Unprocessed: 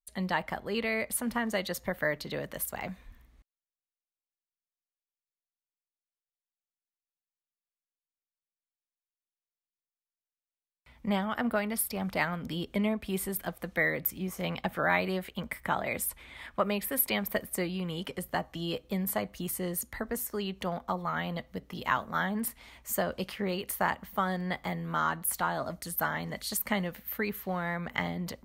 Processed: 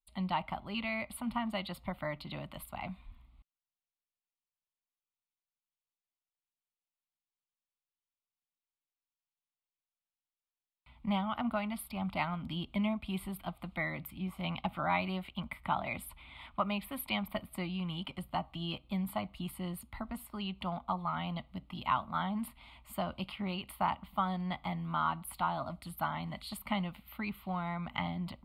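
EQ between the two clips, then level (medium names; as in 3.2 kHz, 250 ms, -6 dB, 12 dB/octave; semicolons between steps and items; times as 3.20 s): dynamic bell 6.8 kHz, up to -6 dB, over -55 dBFS, Q 1.9; distance through air 59 m; static phaser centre 1.7 kHz, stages 6; 0.0 dB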